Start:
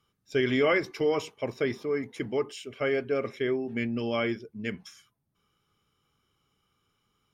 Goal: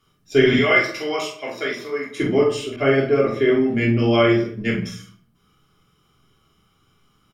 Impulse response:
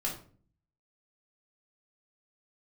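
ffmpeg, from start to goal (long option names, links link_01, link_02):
-filter_complex "[0:a]asettb=1/sr,asplit=3[link_01][link_02][link_03];[link_01]atrim=end=0.534[link_04];[link_02]atrim=start=0.53:end=2.15,asetpts=PTS-STARTPTS,afade=type=in:duration=0.004:curve=qsin,afade=type=out:start_time=1.616:duration=0.004:curve=qsin,highpass=frequency=1300:poles=1[link_05];[link_03]atrim=start=2.146[link_06];[link_04][link_05]acrossfade=duration=0.004:curve1=hsin:curve2=qsin[link_07];[link_07][link_06]acrossfade=duration=0.004:curve1=qsin:curve2=hsin,asplit=2[link_08][link_09];[link_09]adelay=45,volume=-8dB[link_10];[link_08][link_10]amix=inputs=2:normalize=0,asplit=2[link_11][link_12];[link_12]adelay=180,highpass=300,lowpass=3400,asoftclip=type=hard:threshold=-22.5dB,volume=-22dB[link_13];[link_11][link_13]amix=inputs=2:normalize=0[link_14];[1:a]atrim=start_sample=2205[link_15];[link_14][link_15]afir=irnorm=-1:irlink=0,asettb=1/sr,asplit=3[link_16][link_17][link_18];[link_16]atrim=end=2.764[link_19];[link_17]atrim=start=2.76:end=3.49,asetpts=PTS-STARTPTS,afade=type=in:duration=0.004:curve=qsin,afade=type=out:start_time=0.726:duration=0.004:curve=qsin,adynamicequalizer=threshold=0.00794:dfrequency=1900:dqfactor=0.7:tfrequency=1900:tqfactor=0.7:attack=5:release=100:ratio=0.375:range=2.5:mode=cutabove:tftype=highshelf[link_20];[link_18]atrim=start=3.486[link_21];[link_19][link_20]acrossfade=duration=0.004:curve1=hsin:curve2=qsin[link_22];[link_22][link_21]acrossfade=duration=0.004:curve1=qsin:curve2=hsin,volume=7dB"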